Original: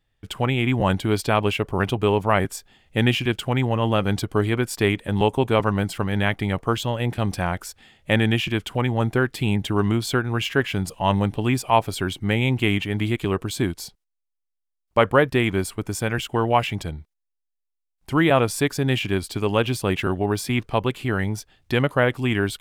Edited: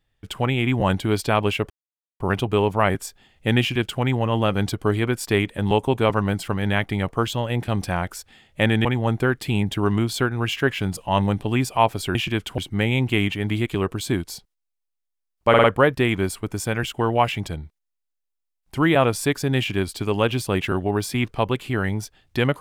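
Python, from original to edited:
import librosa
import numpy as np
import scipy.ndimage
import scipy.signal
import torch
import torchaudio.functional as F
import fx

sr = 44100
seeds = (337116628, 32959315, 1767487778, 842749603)

y = fx.edit(x, sr, fx.insert_silence(at_s=1.7, length_s=0.5),
    fx.move(start_s=8.35, length_s=0.43, to_s=12.08),
    fx.stutter(start_s=14.99, slice_s=0.05, count=4), tone=tone)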